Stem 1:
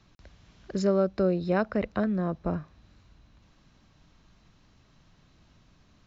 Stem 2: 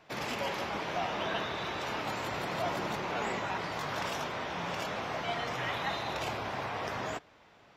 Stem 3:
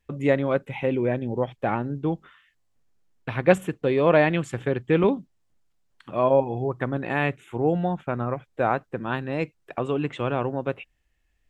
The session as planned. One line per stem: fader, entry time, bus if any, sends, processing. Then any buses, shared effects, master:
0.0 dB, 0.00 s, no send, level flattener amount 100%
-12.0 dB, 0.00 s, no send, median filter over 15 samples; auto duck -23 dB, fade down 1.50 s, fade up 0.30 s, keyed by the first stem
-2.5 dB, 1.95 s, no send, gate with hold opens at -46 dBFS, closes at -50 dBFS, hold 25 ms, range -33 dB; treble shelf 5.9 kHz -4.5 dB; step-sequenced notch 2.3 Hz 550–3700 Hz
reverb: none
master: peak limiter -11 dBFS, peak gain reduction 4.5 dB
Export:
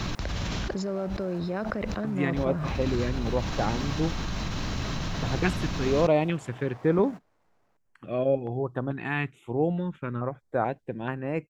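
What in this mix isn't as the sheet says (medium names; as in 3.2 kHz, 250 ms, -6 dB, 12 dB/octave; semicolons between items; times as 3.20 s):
stem 1 0.0 dB -> -9.0 dB; stem 3: missing gate with hold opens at -46 dBFS, closes at -50 dBFS, hold 25 ms, range -33 dB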